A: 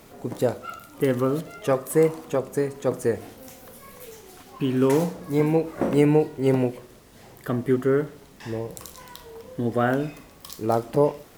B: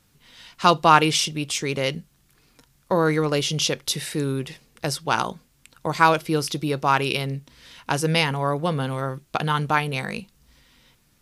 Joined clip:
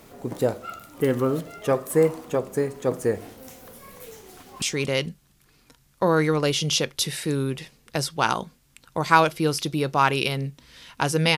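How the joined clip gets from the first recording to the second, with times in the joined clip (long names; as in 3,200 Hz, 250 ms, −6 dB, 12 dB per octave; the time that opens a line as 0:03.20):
A
0:04.33–0:04.62: delay throw 230 ms, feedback 20%, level −8 dB
0:04.62: continue with B from 0:01.51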